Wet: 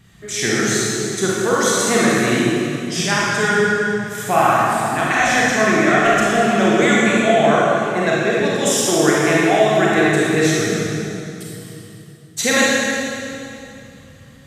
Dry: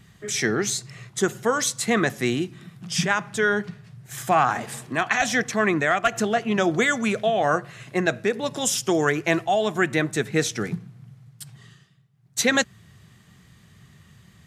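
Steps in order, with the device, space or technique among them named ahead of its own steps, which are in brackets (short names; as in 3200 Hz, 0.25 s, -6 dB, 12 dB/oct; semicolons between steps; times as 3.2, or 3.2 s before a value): stairwell (reverb RT60 2.8 s, pre-delay 28 ms, DRR -6.5 dB)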